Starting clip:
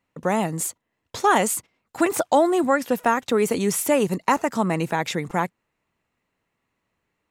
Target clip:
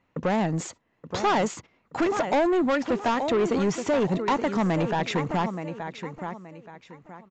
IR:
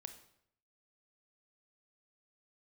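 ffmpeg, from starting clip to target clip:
-filter_complex "[0:a]lowpass=f=2400:p=1,asplit=2[s0][s1];[s1]acompressor=threshold=0.0224:ratio=6,volume=1.41[s2];[s0][s2]amix=inputs=2:normalize=0,aecho=1:1:875|1750|2625:0.251|0.0703|0.0197,asoftclip=type=tanh:threshold=0.119" -ar 16000 -c:a aac -b:a 64k

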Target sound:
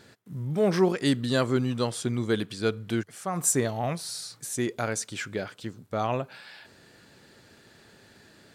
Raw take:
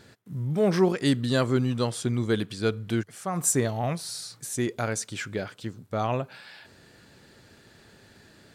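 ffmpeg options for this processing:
-af "lowshelf=f=98:g=-7.5"

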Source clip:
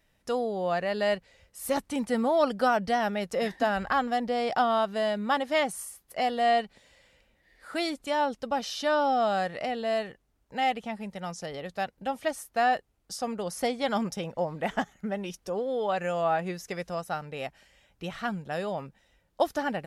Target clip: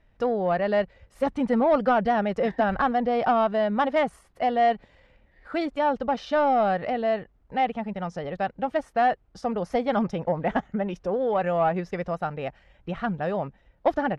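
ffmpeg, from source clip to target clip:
-filter_complex "[0:a]atempo=1.4,aemphasis=mode=reproduction:type=riaa,asplit=2[s0][s1];[s1]highpass=f=720:p=1,volume=3.55,asoftclip=type=tanh:threshold=0.299[s2];[s0][s2]amix=inputs=2:normalize=0,lowpass=f=2300:p=1,volume=0.501"

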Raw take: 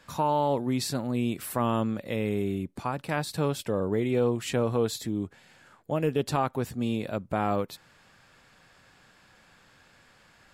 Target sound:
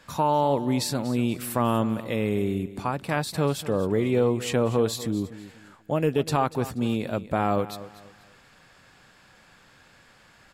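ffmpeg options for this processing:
-af "aecho=1:1:241|482|723:0.168|0.0504|0.0151,volume=1.41"

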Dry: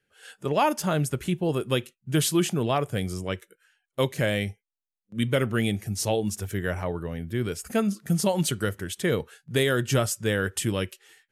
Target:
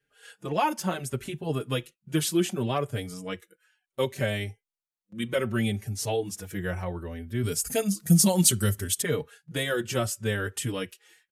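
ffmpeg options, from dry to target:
-filter_complex "[0:a]asettb=1/sr,asplit=3[s0][s1][s2];[s0]atrim=end=7.434[s3];[s1]atrim=start=7.43:end=9.02,asetpts=PTS-STARTPTS,afade=t=in:d=0.004:c=qsin,afade=t=out:st=1.586:d=0.004:c=qsin,bass=f=250:g=7,treble=f=4000:g=14[s4];[s2]atrim=start=9.016[s5];[s3][s4]acrossfade=d=0.004:c1=hsin:c2=qsin[s6];[s6][s5]acrossfade=d=0.004:c1=qsin:c2=hsin,asplit=2[s7][s8];[s8]adelay=4.5,afreqshift=0.66[s9];[s7][s9]amix=inputs=2:normalize=1"

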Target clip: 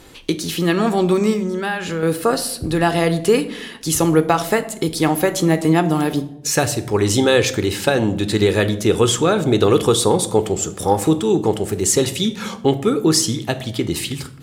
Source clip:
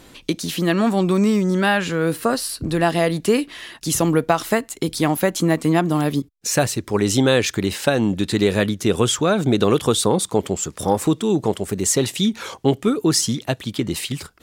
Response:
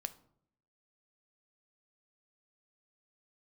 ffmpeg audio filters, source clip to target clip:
-filter_complex "[0:a]asettb=1/sr,asplit=3[s0][s1][s2];[s0]atrim=end=1.334[s3];[s1]atrim=start=1.33:end=2.03,asetpts=PTS-STARTPTS,afade=t=in:d=0.004:c=qsin,afade=t=out:st=0.696:d=0.004:c=qsin,acompressor=threshold=0.0891:ratio=10[s4];[s2]atrim=start=2.026[s5];[s3][s4]acrossfade=d=0.004:c1=hsin:c2=qsin[s6];[s6][s5]acrossfade=d=0.004:c1=qsin:c2=hsin[s7];[1:a]atrim=start_sample=2205,asetrate=29988,aresample=44100[s8];[s7][s8]afir=irnorm=-1:irlink=0,volume=1.26"

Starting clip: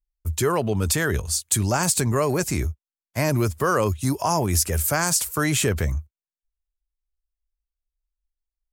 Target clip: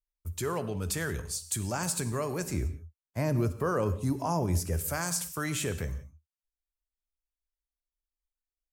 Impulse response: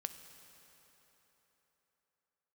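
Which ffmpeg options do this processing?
-filter_complex "[0:a]asettb=1/sr,asplit=3[s0][s1][s2];[s0]atrim=end=2.534[s3];[s1]atrim=start=2.53:end=4.79,asetpts=PTS-STARTPTS,afade=t=in:d=0.004:c=qsin,afade=t=out:st=2.256:d=0.004:c=qsin,tiltshelf=f=1200:g=5[s4];[s2]atrim=start=4.786[s5];[s3][s4]acrossfade=d=0.004:c1=hsin:c2=qsin[s6];[s6][s5]acrossfade=d=0.004:c1=qsin:c2=hsin[s7];[1:a]atrim=start_sample=2205,afade=t=out:st=0.24:d=0.01,atrim=end_sample=11025[s8];[s7][s8]afir=irnorm=-1:irlink=0,volume=0.398"

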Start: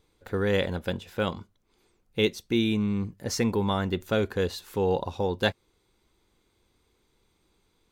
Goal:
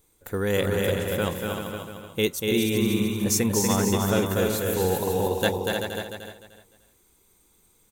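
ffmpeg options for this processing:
-filter_complex "[0:a]asplit=2[s0][s1];[s1]aecho=0:1:301|602|903:0.501|0.125|0.0313[s2];[s0][s2]amix=inputs=2:normalize=0,aexciter=amount=7.1:drive=2.6:freq=6600,asplit=2[s3][s4];[s4]aecho=0:1:240|384|470.4|522.2|553.3:0.631|0.398|0.251|0.158|0.1[s5];[s3][s5]amix=inputs=2:normalize=0"

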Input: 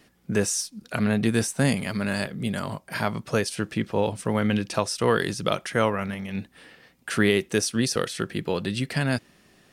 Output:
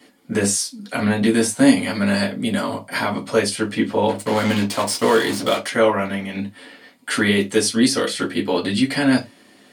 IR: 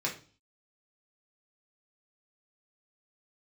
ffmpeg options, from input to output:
-filter_complex "[0:a]asplit=2[s0][s1];[s1]alimiter=limit=0.178:level=0:latency=1:release=44,volume=1.19[s2];[s0][s2]amix=inputs=2:normalize=0,asplit=3[s3][s4][s5];[s3]afade=t=out:st=4.08:d=0.02[s6];[s4]acrusher=bits=3:mix=0:aa=0.5,afade=t=in:st=4.08:d=0.02,afade=t=out:st=5.66:d=0.02[s7];[s5]afade=t=in:st=5.66:d=0.02[s8];[s6][s7][s8]amix=inputs=3:normalize=0[s9];[1:a]atrim=start_sample=2205,afade=t=out:st=0.27:d=0.01,atrim=end_sample=12348,asetrate=83790,aresample=44100[s10];[s9][s10]afir=irnorm=-1:irlink=0,volume=1.12"

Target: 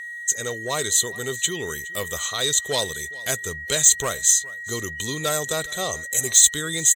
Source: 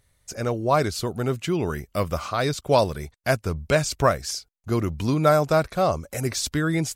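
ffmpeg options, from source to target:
-filter_complex "[0:a]superequalizer=7b=2.24:13b=3.55:14b=0.355:15b=3.98,acontrast=86,aeval=exprs='val(0)+0.0794*sin(2*PI*1900*n/s)':c=same,crystalizer=i=7:c=0,asplit=2[s0][s1];[s1]aecho=0:1:417:0.0841[s2];[s0][s2]amix=inputs=2:normalize=0,volume=0.141"

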